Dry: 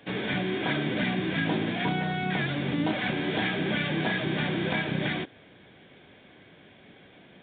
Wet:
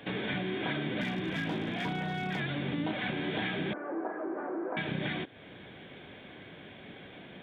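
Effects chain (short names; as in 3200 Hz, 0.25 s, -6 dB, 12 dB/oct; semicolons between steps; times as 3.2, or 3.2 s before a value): 3.73–4.77 elliptic band-pass 310–1300 Hz, stop band 50 dB; compressor 2:1, threshold -43 dBFS, peak gain reduction 11 dB; 1.01–2.4 hard clip -32.5 dBFS, distortion -23 dB; gain +4.5 dB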